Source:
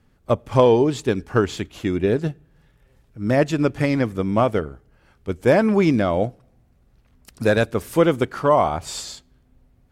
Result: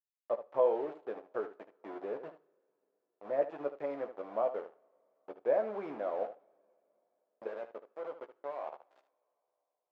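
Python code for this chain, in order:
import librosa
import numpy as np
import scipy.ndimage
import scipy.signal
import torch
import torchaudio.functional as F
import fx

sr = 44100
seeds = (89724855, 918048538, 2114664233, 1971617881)

p1 = fx.level_steps(x, sr, step_db=24, at=(7.47, 8.91))
p2 = np.where(np.abs(p1) >= 10.0 ** (-23.0 / 20.0), p1, 0.0)
p3 = fx.ladder_bandpass(p2, sr, hz=690.0, resonance_pct=40)
p4 = p3 + fx.room_early_taps(p3, sr, ms=(14, 75), db=(-7.5, -11.5), dry=0)
p5 = fx.rev_double_slope(p4, sr, seeds[0], early_s=0.6, late_s=4.0, knee_db=-21, drr_db=18.0)
y = p5 * librosa.db_to_amplitude(-5.5)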